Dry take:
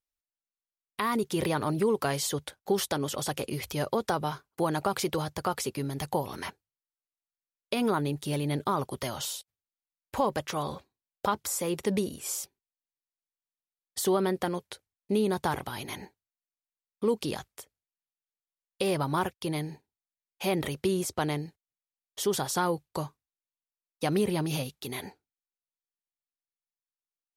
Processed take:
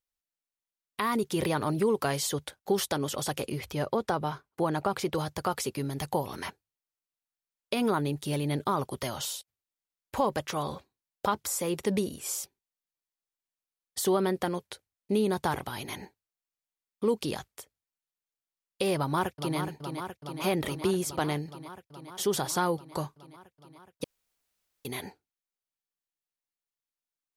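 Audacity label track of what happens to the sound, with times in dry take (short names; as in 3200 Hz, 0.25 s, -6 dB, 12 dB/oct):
3.520000	5.150000	high shelf 3900 Hz -8 dB
18.960000	19.580000	echo throw 0.42 s, feedback 80%, level -7.5 dB
24.040000	24.850000	room tone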